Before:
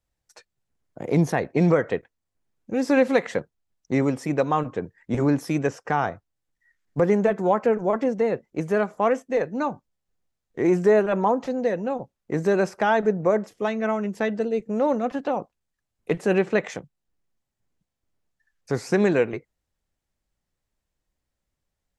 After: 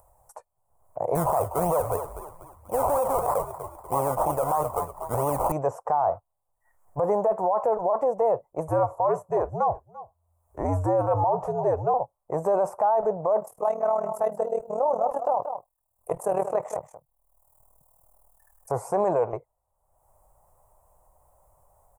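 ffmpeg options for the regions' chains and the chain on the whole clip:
ffmpeg -i in.wav -filter_complex "[0:a]asettb=1/sr,asplit=3[link_01][link_02][link_03];[link_01]atrim=end=1.154[link_04];[link_02]atrim=start=1.15:end=5.52,asetpts=PTS-STARTPTS,afade=type=in:duration=0.004:curve=qsin,afade=type=out:start_time=4.366:duration=0.004:curve=qsin,equalizer=frequency=7800:width=0.39:gain=14.5,acrusher=samples=20:mix=1:aa=0.000001:lfo=1:lforange=12:lforate=3.1,asplit=5[link_05][link_06][link_07][link_08][link_09];[link_06]adelay=244,afreqshift=-63,volume=-16.5dB[link_10];[link_07]adelay=488,afreqshift=-126,volume=-23.6dB[link_11];[link_08]adelay=732,afreqshift=-189,volume=-30.8dB[link_12];[link_09]adelay=976,afreqshift=-252,volume=-37.9dB[link_13];[link_05][link_10][link_11][link_12][link_13]amix=inputs=5:normalize=0,atrim=end_sample=192717[link_14];[link_03]atrim=start=5.516[link_15];[link_04][link_14]acrossfade=duration=0.004:curve1=hsin:curve2=qsin[link_16];[link_16][link_15]acrossfade=duration=0.004:curve1=qsin:curve2=hsin,asettb=1/sr,asplit=3[link_17][link_18][link_19];[link_17]atrim=end=8.684[link_20];[link_18]atrim=start=8.68:end=11.94,asetpts=PTS-STARTPTS,afade=type=in:duration=0.004:curve=qsin,afade=type=out:start_time=3.256:duration=0.004:curve=qsin,afreqshift=-84,aecho=1:1:341:0.0668,atrim=end_sample=143766[link_21];[link_19]atrim=start=11.936[link_22];[link_20][link_21]acrossfade=duration=0.004:curve1=hsin:curve2=qsin[link_23];[link_23][link_22]acrossfade=duration=0.004:curve1=qsin:curve2=hsin,asettb=1/sr,asplit=3[link_24][link_25][link_26];[link_24]atrim=end=13.404[link_27];[link_25]atrim=start=13.4:end=18.72,asetpts=PTS-STARTPTS,afade=type=in:duration=0.004:curve=qsin,afade=type=out:start_time=5.316:duration=0.004:curve=qsin,aemphasis=mode=production:type=50kf,tremolo=f=39:d=0.788,aecho=1:1:182:0.211,atrim=end_sample=234612[link_28];[link_26]atrim=start=18.716[link_29];[link_27][link_28]acrossfade=duration=0.004:curve1=hsin:curve2=qsin[link_30];[link_30][link_29]acrossfade=duration=0.004:curve1=qsin:curve2=hsin,firequalizer=gain_entry='entry(110,0);entry(230,-16);entry(610,12);entry(1000,13);entry(1600,-14);entry(3800,-25);entry(8800,4)':delay=0.05:min_phase=1,alimiter=limit=-15dB:level=0:latency=1:release=15,acompressor=mode=upward:threshold=-45dB:ratio=2.5" out.wav

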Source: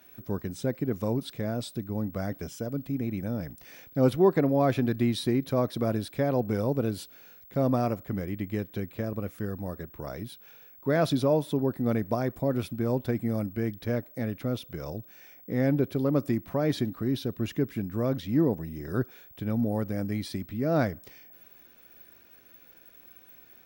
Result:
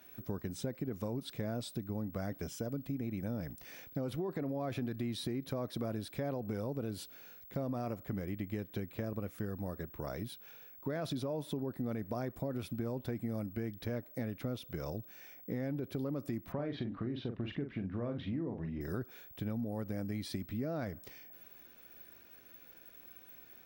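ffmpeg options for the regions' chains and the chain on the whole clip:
ffmpeg -i in.wav -filter_complex "[0:a]asettb=1/sr,asplit=3[link_01][link_02][link_03];[link_01]atrim=end=16.524[link_04];[link_02]atrim=start=16.52:end=18.81,asetpts=PTS-STARTPTS,afade=type=in:duration=0.004:curve=qsin,afade=type=out:start_time=2.286:duration=0.004:curve=qsin,lowpass=frequency=3300:width=0.5412,lowpass=frequency=3300:width=1.3066,acompressor=threshold=-29dB:ratio=2:attack=3.2:release=140:knee=1:detection=peak,asplit=2[link_05][link_06];[link_06]adelay=42,volume=-7dB[link_07];[link_05][link_07]amix=inputs=2:normalize=0,atrim=end_sample=100989[link_08];[link_03]atrim=start=18.806[link_09];[link_04][link_08]acrossfade=duration=0.004:curve1=hsin:curve2=qsin[link_10];[link_10][link_09]acrossfade=duration=0.004:curve1=qsin:curve2=hsin,deesser=0.75,alimiter=limit=-20dB:level=0:latency=1:release=25,acompressor=threshold=-32dB:ratio=6,volume=-2dB" out.wav

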